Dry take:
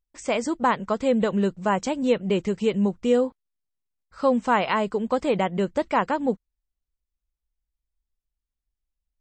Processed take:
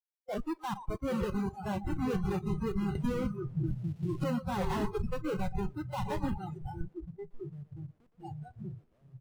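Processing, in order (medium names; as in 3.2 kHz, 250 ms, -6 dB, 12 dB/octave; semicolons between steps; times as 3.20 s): knee-point frequency compression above 1.9 kHz 1.5:1; resampled via 8 kHz; on a send: repeats whose band climbs or falls 514 ms, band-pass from 310 Hz, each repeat 0.7 oct, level -11 dB; on the sum: Schmitt trigger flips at -23.5 dBFS; ever faster or slower copies 731 ms, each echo -4 st, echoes 3, each echo -6 dB; in parallel at -10 dB: sample-and-hold 19×; on the sum: treble shelf 3 kHz -10.5 dB; two-band feedback delay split 330 Hz, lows 419 ms, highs 118 ms, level -8 dB; spectral noise reduction 28 dB; 2.95–4.24 s: three bands compressed up and down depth 100%; trim -7 dB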